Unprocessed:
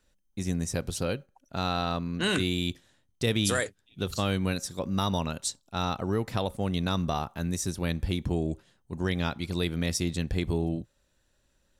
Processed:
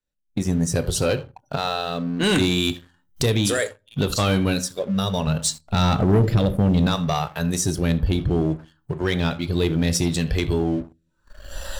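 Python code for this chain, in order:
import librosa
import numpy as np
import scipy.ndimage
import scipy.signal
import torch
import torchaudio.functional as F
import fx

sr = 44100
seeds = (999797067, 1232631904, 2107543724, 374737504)

p1 = fx.recorder_agc(x, sr, target_db=-24.0, rise_db_per_s=37.0, max_gain_db=30)
p2 = p1 + fx.echo_feedback(p1, sr, ms=82, feedback_pct=23, wet_db=-20.5, dry=0)
p3 = fx.rotary(p2, sr, hz=0.65)
p4 = fx.low_shelf(p3, sr, hz=350.0, db=8.5, at=(5.27, 6.87))
p5 = fx.noise_reduce_blind(p4, sr, reduce_db=16)
p6 = fx.room_shoebox(p5, sr, seeds[0], volume_m3=230.0, walls='furnished', distance_m=0.37)
p7 = np.clip(p6, -10.0 ** (-23.5 / 20.0), 10.0 ** (-23.5 / 20.0))
p8 = p6 + (p7 * 10.0 ** (-6.5 / 20.0))
p9 = fx.high_shelf(p8, sr, hz=12000.0, db=11.0, at=(2.63, 3.31))
y = fx.leveller(p9, sr, passes=2)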